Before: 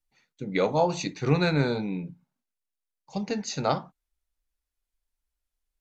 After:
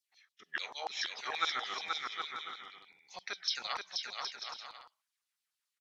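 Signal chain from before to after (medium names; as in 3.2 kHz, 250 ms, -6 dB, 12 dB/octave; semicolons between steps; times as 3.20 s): sawtooth pitch modulation -3.5 st, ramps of 592 ms; in parallel at 0 dB: compression, threshold -37 dBFS, peak gain reduction 18 dB; on the sum: LFO high-pass saw down 6.9 Hz 990–5100 Hz; bouncing-ball echo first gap 480 ms, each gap 0.6×, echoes 5; trim -6 dB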